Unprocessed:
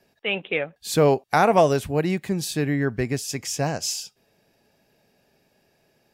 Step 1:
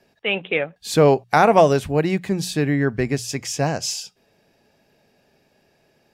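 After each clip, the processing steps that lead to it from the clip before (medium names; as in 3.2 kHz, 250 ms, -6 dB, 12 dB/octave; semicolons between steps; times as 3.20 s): treble shelf 10 kHz -9.5 dB; hum notches 60/120/180 Hz; trim +3.5 dB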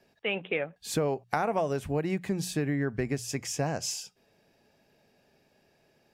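dynamic bell 4 kHz, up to -6 dB, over -42 dBFS, Q 1.5; compression 6:1, threshold -20 dBFS, peak gain reduction 11 dB; trim -5 dB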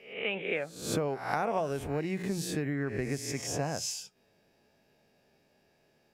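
reverse spectral sustain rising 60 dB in 0.57 s; trim -4 dB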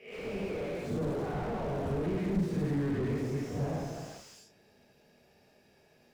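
gated-style reverb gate 470 ms falling, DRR -7 dB; slew-rate limiter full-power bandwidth 17 Hz; trim -3.5 dB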